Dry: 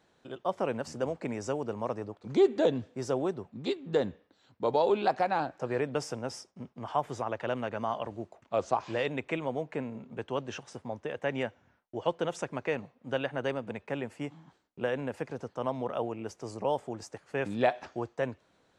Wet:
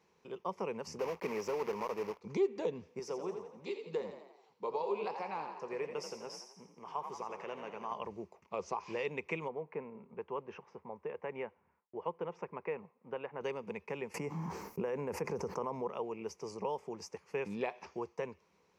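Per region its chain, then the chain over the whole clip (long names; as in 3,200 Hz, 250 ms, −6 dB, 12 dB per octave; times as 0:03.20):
0:00.99–0:02.20: one scale factor per block 3 bits + mid-hump overdrive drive 16 dB, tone 1,100 Hz, clips at −18 dBFS
0:02.99–0:07.92: flanger 1.7 Hz, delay 4.5 ms, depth 9.3 ms, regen −80% + high-pass filter 260 Hz 6 dB per octave + echo with shifted repeats 85 ms, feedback 53%, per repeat +47 Hz, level −8.5 dB
0:09.48–0:13.41: low-pass filter 1,600 Hz + low-shelf EQ 430 Hz −6 dB
0:14.14–0:15.88: parametric band 3,400 Hz −12 dB 1.1 octaves + envelope flattener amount 70%
whole clip: low-shelf EQ 85 Hz −7 dB; downward compressor 2 to 1, threshold −32 dBFS; EQ curve with evenly spaced ripples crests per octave 0.81, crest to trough 11 dB; level −4.5 dB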